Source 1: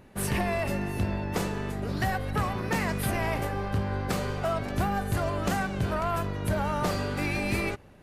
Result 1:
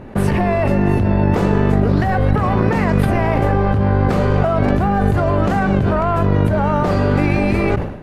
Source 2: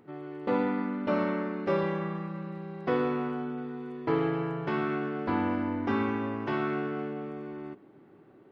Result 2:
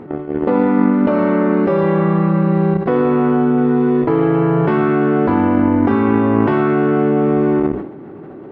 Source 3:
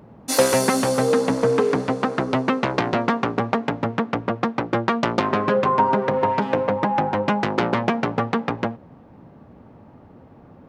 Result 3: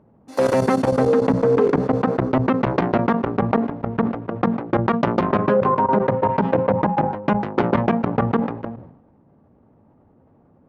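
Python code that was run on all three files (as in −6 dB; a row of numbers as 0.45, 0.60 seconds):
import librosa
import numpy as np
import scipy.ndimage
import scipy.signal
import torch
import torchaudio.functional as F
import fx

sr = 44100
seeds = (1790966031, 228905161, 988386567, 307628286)

y = fx.level_steps(x, sr, step_db=20)
y = fx.lowpass(y, sr, hz=1000.0, slope=6)
y = fx.hum_notches(y, sr, base_hz=60, count=3)
y = fx.sustainer(y, sr, db_per_s=77.0)
y = y * 10.0 ** (-2 / 20.0) / np.max(np.abs(y))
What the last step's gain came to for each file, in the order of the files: +25.5, +26.5, +5.5 decibels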